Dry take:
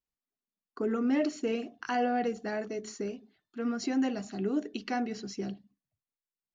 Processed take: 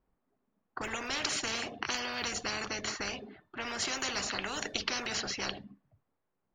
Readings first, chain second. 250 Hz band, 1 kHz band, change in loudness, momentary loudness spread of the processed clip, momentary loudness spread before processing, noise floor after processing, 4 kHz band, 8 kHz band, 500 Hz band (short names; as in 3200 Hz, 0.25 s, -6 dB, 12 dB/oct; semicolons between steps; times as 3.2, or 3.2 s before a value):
-13.0 dB, -3.5 dB, -1.5 dB, 9 LU, 10 LU, -82 dBFS, +12.5 dB, n/a, -8.5 dB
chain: low-pass opened by the level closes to 990 Hz, open at -27.5 dBFS; spectral compressor 10:1; gain +5 dB